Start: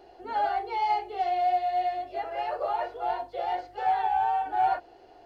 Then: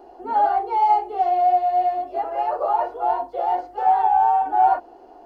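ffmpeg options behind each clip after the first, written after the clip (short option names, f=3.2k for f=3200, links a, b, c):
-af "equalizer=f=125:t=o:w=1:g=-12,equalizer=f=250:t=o:w=1:g=9,equalizer=f=1k:t=o:w=1:g=8,equalizer=f=2k:t=o:w=1:g=-7,equalizer=f=4k:t=o:w=1:g=-8,volume=3.5dB"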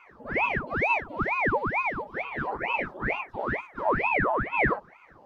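-af "aeval=exprs='val(0)*sin(2*PI*950*n/s+950*0.9/2.2*sin(2*PI*2.2*n/s))':c=same,volume=-5dB"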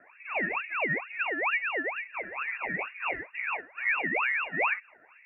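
-af "lowpass=f=2.4k:t=q:w=0.5098,lowpass=f=2.4k:t=q:w=0.6013,lowpass=f=2.4k:t=q:w=0.9,lowpass=f=2.4k:t=q:w=2.563,afreqshift=-2800,volume=-3dB"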